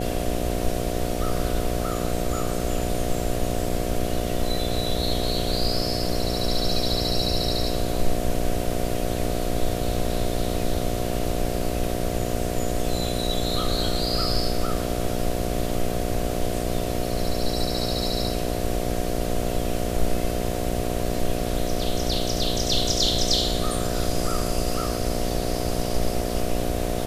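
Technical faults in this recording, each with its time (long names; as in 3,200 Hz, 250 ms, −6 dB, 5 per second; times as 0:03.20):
mains buzz 60 Hz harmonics 12 −28 dBFS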